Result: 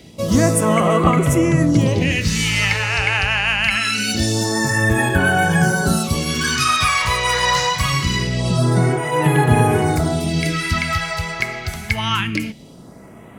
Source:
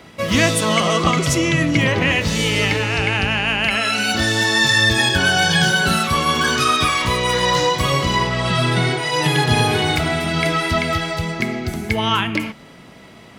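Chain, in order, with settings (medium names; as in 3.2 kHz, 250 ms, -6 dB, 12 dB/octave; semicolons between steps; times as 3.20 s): phase shifter stages 2, 0.24 Hz, lowest notch 250–4800 Hz; dynamic bell 3.4 kHz, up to -7 dB, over -39 dBFS, Q 3.3; trim +2.5 dB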